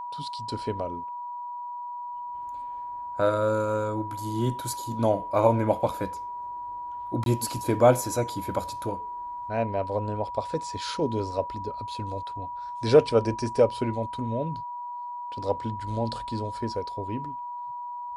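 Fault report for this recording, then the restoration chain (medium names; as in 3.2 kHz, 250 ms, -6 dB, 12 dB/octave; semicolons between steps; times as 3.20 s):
whine 970 Hz -33 dBFS
7.24–7.26 s: dropout 22 ms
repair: band-stop 970 Hz, Q 30; interpolate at 7.24 s, 22 ms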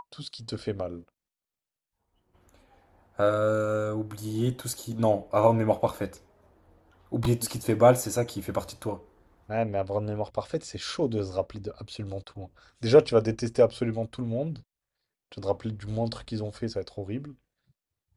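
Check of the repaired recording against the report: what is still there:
nothing left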